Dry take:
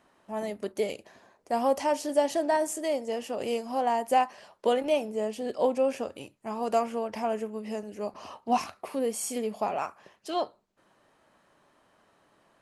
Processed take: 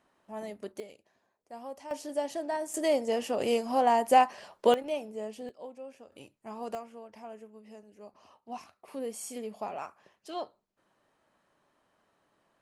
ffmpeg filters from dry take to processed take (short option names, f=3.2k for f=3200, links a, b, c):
-af "asetnsamples=n=441:p=0,asendcmd='0.8 volume volume -17dB;1.91 volume volume -7.5dB;2.74 volume volume 2.5dB;4.74 volume volume -7.5dB;5.49 volume volume -19dB;6.12 volume volume -7.5dB;6.75 volume volume -15.5dB;8.88 volume volume -7.5dB',volume=-6.5dB"